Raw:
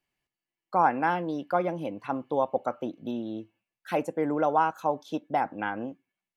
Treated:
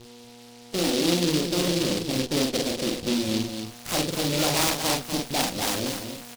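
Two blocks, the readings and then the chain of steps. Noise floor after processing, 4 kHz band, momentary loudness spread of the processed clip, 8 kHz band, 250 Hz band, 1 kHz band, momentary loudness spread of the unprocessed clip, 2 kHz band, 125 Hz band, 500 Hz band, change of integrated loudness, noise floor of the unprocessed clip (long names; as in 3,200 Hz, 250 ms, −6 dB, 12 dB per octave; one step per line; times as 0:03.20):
−47 dBFS, +24.5 dB, 6 LU, can't be measured, +6.5 dB, −6.5 dB, 10 LU, +3.5 dB, +10.0 dB, +1.5 dB, +4.0 dB, below −85 dBFS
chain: spectral magnitudes quantised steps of 30 dB
low-shelf EQ 160 Hz +9 dB
notch filter 450 Hz, Q 12
hum with harmonics 120 Hz, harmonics 33, −49 dBFS −3 dB per octave
low-pass filter sweep 430 Hz → 2,700 Hz, 0:02.67–0:04.59
soft clipping −25 dBFS, distortion −9 dB
harmonic generator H 8 −17 dB, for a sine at −25 dBFS
double-tracking delay 46 ms −2.5 dB
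on a send: single-tap delay 243 ms −7 dB
on the sum: short delay modulated by noise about 3,800 Hz, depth 0.2 ms
level +3.5 dB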